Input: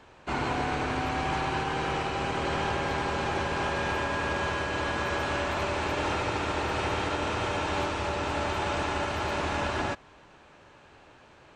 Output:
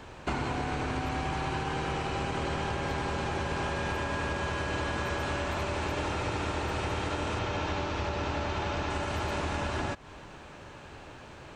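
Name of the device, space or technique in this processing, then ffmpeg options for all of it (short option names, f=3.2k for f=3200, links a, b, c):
ASMR close-microphone chain: -filter_complex "[0:a]lowshelf=f=240:g=6.5,acompressor=threshold=-34dB:ratio=10,highshelf=f=7.1k:g=6,asettb=1/sr,asplit=3[a][b][c];[a]atrim=end=7.394[d];[b]atrim=start=7.39:end=8.9,asetpts=PTS-STARTPTS,afade=t=in:d=0.004:c=qsin,afade=t=out:st=1.506:d=0.004:c=qsin,lowpass=f=6.4k:w=0.5412,lowpass=f=6.4k:w=1.3066[e];[c]atrim=start=8.896[f];[d][e]acrossfade=d=0.004:c1=hsin:c2=qsin[g];[g][f]acrossfade=d=0.004:c1=qsin:c2=hsin,volume=5.5dB"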